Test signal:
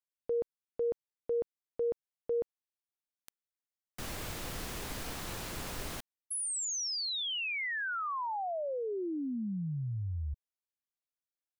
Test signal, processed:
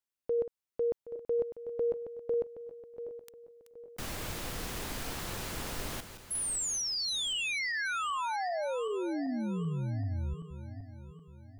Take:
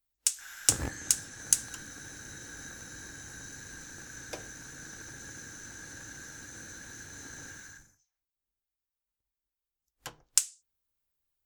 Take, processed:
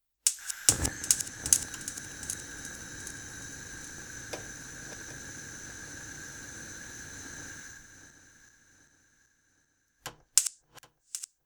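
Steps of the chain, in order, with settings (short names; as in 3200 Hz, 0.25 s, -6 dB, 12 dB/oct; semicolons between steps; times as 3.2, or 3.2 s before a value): regenerating reverse delay 0.386 s, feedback 62%, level -11 dB; gain +1.5 dB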